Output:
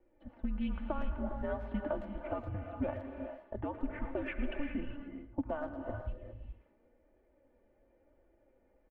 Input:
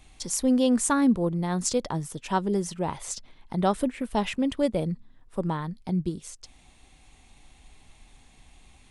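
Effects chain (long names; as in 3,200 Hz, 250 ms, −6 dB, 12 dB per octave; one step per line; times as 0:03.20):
single-sideband voice off tune −290 Hz 230–3,200 Hz
low-shelf EQ 230 Hz −9 dB
comb filter 3.4 ms, depth 70%
brickwall limiter −21 dBFS, peak gain reduction 10 dB
downward compressor 12 to 1, threshold −33 dBFS, peak gain reduction 9.5 dB
flanger 0.97 Hz, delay 2.6 ms, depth 2.4 ms, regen +52%
low-pass that shuts in the quiet parts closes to 410 Hz, open at −29.5 dBFS
far-end echo of a speakerphone 110 ms, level −12 dB
reverb whose tail is shaped and stops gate 440 ms rising, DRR 5 dB
level +5 dB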